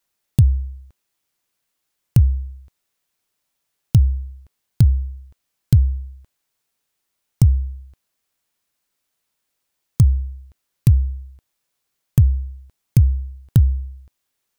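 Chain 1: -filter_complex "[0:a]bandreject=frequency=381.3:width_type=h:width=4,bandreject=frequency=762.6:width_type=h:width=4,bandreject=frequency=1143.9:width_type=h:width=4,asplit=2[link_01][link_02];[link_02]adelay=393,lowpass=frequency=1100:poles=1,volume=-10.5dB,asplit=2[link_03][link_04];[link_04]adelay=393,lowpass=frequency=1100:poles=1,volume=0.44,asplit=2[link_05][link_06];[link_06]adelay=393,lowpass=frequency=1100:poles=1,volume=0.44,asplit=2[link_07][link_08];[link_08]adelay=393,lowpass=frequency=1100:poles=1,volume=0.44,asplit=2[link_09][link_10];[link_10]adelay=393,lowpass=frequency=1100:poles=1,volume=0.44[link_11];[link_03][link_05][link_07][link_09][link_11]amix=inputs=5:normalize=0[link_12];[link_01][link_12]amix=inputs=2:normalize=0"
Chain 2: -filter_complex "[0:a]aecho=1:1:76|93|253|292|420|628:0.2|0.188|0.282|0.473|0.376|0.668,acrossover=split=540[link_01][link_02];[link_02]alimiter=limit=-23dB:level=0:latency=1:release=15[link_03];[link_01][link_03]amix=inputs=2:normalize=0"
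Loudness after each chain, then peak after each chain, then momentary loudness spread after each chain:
−20.5, −18.5 LKFS; −2.0, −2.0 dBFS; 17, 6 LU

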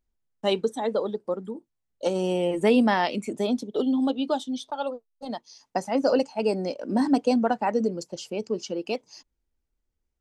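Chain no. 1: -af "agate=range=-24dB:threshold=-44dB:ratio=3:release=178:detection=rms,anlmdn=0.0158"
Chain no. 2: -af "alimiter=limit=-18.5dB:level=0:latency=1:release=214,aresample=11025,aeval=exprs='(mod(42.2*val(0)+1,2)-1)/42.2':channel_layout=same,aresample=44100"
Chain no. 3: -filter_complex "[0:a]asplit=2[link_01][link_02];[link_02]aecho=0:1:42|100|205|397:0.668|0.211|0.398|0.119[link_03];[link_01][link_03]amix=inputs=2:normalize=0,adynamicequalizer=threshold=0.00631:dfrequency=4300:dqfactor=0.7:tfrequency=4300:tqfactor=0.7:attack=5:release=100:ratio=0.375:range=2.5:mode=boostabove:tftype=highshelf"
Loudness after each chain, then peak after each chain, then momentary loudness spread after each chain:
−26.5, −37.5, −24.0 LKFS; −9.5, −28.0, −7.0 dBFS; 12, 6, 13 LU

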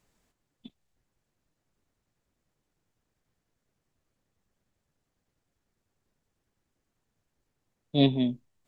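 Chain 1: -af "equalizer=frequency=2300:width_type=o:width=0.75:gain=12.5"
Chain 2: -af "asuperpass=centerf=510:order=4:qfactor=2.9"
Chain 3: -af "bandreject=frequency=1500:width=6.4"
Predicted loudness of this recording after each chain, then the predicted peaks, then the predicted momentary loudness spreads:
−25.5, −38.0, −26.5 LKFS; −7.5, −21.5, −9.5 dBFS; 8, 13, 7 LU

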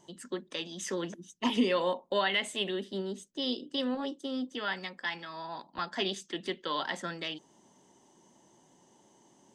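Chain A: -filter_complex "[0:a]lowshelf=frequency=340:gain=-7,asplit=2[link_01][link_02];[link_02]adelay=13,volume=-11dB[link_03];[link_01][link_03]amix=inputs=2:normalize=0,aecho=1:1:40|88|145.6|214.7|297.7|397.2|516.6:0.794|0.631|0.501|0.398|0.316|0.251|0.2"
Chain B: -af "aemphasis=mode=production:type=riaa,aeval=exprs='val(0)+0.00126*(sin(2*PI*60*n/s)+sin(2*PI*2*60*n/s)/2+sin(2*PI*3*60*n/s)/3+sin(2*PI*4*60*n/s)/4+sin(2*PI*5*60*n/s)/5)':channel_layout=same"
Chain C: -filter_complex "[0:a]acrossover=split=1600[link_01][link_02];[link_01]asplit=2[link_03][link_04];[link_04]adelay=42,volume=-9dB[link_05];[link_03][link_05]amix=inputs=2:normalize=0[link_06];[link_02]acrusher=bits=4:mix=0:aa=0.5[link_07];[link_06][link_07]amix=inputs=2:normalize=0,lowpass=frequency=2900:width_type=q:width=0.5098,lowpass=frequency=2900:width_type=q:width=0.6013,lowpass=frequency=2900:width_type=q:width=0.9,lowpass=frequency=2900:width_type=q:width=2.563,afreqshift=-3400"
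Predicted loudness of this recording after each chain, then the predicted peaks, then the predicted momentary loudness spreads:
−30.5, −31.5, −31.5 LKFS; −13.0, −13.5, −15.0 dBFS; 12, 11, 13 LU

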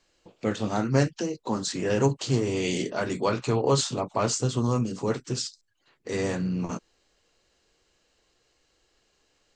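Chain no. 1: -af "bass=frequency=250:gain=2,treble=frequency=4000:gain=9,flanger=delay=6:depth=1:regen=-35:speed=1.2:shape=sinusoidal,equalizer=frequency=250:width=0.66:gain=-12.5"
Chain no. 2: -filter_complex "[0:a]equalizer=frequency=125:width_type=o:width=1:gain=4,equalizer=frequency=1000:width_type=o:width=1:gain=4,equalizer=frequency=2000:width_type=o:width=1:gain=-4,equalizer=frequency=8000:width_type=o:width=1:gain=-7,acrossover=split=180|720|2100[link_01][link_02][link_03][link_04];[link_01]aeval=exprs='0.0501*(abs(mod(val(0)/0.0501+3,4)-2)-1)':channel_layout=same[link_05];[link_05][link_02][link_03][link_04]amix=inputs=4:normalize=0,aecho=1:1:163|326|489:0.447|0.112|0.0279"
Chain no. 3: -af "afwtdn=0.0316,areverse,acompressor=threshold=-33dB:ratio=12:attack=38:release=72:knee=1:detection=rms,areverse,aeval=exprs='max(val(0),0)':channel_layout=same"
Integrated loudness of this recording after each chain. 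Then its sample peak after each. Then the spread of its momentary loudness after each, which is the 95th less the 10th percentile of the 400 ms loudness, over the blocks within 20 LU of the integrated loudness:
−32.0, −26.5, −40.5 LKFS; −11.5, −8.0, −18.0 dBFS; 13, 9, 6 LU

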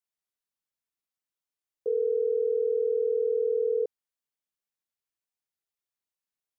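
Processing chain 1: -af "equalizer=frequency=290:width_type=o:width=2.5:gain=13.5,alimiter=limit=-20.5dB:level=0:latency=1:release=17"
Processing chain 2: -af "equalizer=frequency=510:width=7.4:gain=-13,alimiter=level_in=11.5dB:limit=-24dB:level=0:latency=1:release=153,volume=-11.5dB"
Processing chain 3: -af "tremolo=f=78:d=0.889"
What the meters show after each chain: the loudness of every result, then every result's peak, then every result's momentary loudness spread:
−26.5, −42.0, −31.5 LKFS; −20.5, −35.5, −20.0 dBFS; 4, 4, 5 LU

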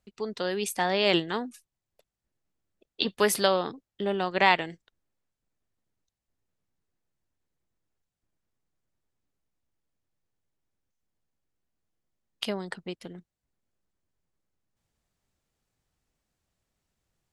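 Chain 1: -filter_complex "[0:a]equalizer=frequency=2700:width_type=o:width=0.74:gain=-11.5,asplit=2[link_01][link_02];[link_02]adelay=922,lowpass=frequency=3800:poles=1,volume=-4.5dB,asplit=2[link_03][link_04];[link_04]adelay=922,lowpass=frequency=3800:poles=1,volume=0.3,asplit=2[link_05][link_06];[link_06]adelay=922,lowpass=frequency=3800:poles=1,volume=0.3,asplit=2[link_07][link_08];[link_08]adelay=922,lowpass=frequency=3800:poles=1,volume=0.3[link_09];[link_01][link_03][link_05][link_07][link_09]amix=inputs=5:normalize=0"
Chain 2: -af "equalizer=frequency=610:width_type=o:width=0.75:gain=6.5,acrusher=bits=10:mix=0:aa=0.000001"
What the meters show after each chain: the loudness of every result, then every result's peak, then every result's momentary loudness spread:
−30.0, −24.5 LKFS; −7.5, −4.0 dBFS; 19, 17 LU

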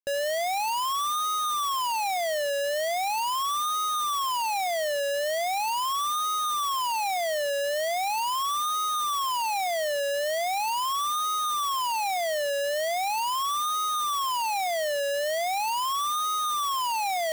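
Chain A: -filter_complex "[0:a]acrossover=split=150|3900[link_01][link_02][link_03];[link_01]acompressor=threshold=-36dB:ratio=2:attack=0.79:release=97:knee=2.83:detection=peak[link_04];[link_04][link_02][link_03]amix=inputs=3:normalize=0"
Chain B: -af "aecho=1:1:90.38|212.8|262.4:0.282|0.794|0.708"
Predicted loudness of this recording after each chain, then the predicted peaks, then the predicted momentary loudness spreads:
−26.5, −23.0 LKFS; −20.5, −18.5 dBFS; 1, 1 LU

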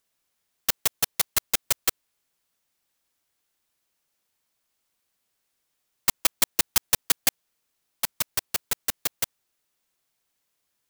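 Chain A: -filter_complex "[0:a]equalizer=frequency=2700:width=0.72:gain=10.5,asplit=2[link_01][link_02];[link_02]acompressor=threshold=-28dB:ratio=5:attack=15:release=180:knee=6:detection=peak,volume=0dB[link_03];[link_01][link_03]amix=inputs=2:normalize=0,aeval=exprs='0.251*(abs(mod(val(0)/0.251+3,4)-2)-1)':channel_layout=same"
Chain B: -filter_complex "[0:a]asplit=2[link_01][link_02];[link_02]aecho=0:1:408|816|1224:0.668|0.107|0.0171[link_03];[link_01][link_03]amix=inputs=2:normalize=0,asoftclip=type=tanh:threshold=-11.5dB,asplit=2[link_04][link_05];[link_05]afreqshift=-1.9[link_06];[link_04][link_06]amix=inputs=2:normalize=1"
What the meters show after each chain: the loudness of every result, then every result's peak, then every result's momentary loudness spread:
−24.0, −29.0 LKFS; −12.0, −10.5 dBFS; 5, 9 LU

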